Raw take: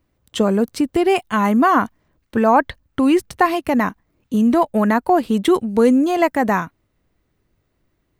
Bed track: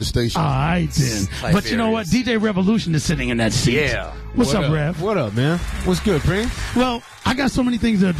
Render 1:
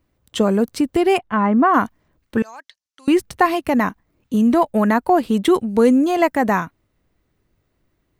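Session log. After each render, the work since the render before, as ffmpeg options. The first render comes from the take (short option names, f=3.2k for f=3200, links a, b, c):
-filter_complex "[0:a]asplit=3[a][b][c];[a]afade=t=out:st=1.17:d=0.02[d];[b]lowpass=1.8k,afade=t=in:st=1.17:d=0.02,afade=t=out:st=1.73:d=0.02[e];[c]afade=t=in:st=1.73:d=0.02[f];[d][e][f]amix=inputs=3:normalize=0,asettb=1/sr,asplit=3[g][h][i];[g]atrim=end=2.424[j];[h]atrim=start=2.42:end=3.08,asetpts=PTS-STARTPTS,afade=t=in:d=0.004:c=qsin,afade=t=out:st=0.656:d=0.004:c=qsin,bandpass=f=5.8k:t=q:w=2.6[k];[i]atrim=start=3.076[l];[j][k]acrossfade=d=0.004:c1=hsin:c2=qsin[m];[m][l]acrossfade=d=0.004:c1=qsin:c2=hsin"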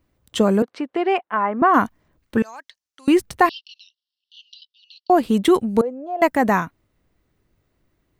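-filter_complex "[0:a]asettb=1/sr,asplit=3[a][b][c];[a]atrim=end=0.624[d];[b]atrim=start=0.62:end=1.62,asetpts=PTS-STARTPTS,afade=t=in:d=0.004:c=qsin,afade=t=out:st=0.996:d=0.004:c=qsin,highpass=450,lowpass=2.5k[e];[c]atrim=start=1.616[f];[d][e]acrossfade=d=0.004:c1=hsin:c2=qsin[g];[g][f]acrossfade=d=0.004:c1=qsin:c2=hsin,asettb=1/sr,asplit=3[h][i][j];[h]atrim=end=3.494[k];[i]atrim=start=3.49:end=5.1,asetpts=PTS-STARTPTS,afade=t=in:d=0.004:c=qsin,afade=t=out:st=1.606:d=0.004:c=qsin,asuperpass=centerf=4000:order=20:qfactor=1.4[l];[j]atrim=start=5.096[m];[k][l]acrossfade=d=0.004:c1=hsin:c2=qsin[n];[n][m]acrossfade=d=0.004:c1=qsin:c2=hsin,asettb=1/sr,asplit=3[o][p][q];[o]atrim=end=5.814[r];[p]atrim=start=5.81:end=6.22,asetpts=PTS-STARTPTS,afade=t=in:d=0.004:c=qsin,afade=t=out:st=0.406:d=0.004:c=qsin,bandpass=f=640:t=q:w=5.6[s];[q]atrim=start=6.216[t];[r][s]acrossfade=d=0.004:c1=hsin:c2=qsin[u];[u][t]acrossfade=d=0.004:c1=qsin:c2=hsin"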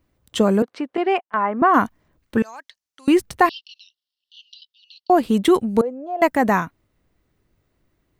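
-filter_complex "[0:a]asettb=1/sr,asplit=3[a][b][c];[a]atrim=end=0.974[d];[b]atrim=start=0.97:end=1.53,asetpts=PTS-STARTPTS,afade=t=in:d=0.004:c=qsin,afade=t=out:st=0.556:d=0.004:c=qsin,agate=range=-18dB:threshold=-27dB:ratio=16:release=100:detection=peak[e];[c]atrim=start=1.526[f];[d][e]acrossfade=d=0.004:c1=hsin:c2=qsin[g];[g][f]acrossfade=d=0.004:c1=qsin:c2=hsin"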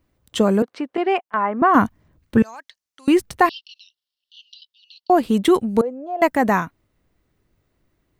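-filter_complex "[0:a]asettb=1/sr,asplit=3[a][b][c];[a]atrim=end=1.754[d];[b]atrim=start=1.75:end=2.55,asetpts=PTS-STARTPTS,afade=t=in:d=0.004:c=qsin,afade=t=out:st=0.796:d=0.004:c=qsin,equalizer=f=95:w=0.5:g=9[e];[c]atrim=start=2.546[f];[d][e]acrossfade=d=0.004:c1=hsin:c2=qsin[g];[g][f]acrossfade=d=0.004:c1=qsin:c2=hsin"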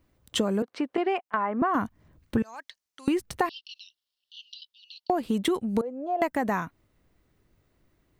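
-af "acompressor=threshold=-23dB:ratio=6"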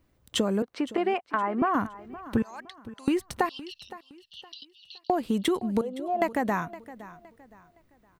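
-af "aecho=1:1:515|1030|1545:0.141|0.0466|0.0154"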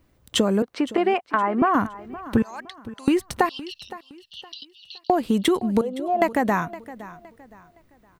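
-af "volume=5.5dB"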